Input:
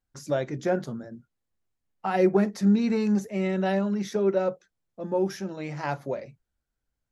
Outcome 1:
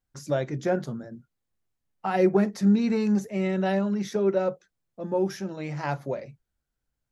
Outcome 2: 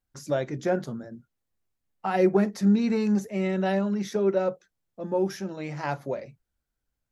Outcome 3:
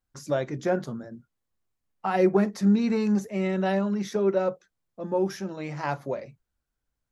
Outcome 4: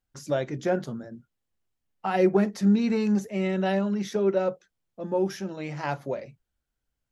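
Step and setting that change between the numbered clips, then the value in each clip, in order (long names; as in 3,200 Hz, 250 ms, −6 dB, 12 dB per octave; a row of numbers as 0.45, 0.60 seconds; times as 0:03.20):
parametric band, centre frequency: 140, 14,000, 1,100, 3,000 Hertz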